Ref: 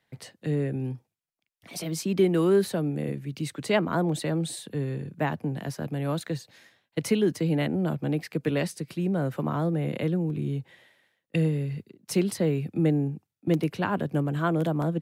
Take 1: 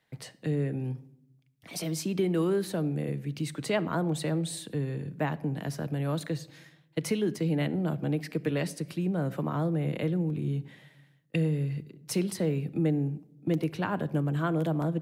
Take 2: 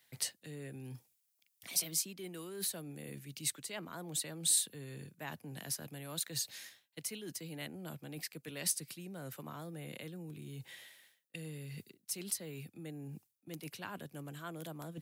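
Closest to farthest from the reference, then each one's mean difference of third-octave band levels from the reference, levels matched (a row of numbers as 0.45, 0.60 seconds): 1, 2; 2.0, 8.0 decibels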